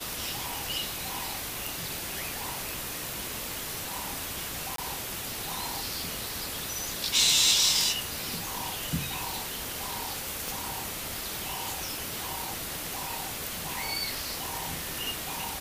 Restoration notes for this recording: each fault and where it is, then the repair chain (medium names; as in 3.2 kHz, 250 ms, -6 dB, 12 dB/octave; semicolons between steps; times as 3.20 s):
4.76–4.78 s: dropout 23 ms
10.48 s: pop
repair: de-click; interpolate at 4.76 s, 23 ms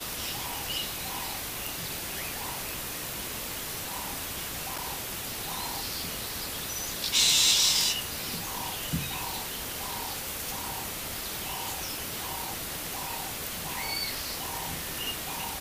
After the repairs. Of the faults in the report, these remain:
nothing left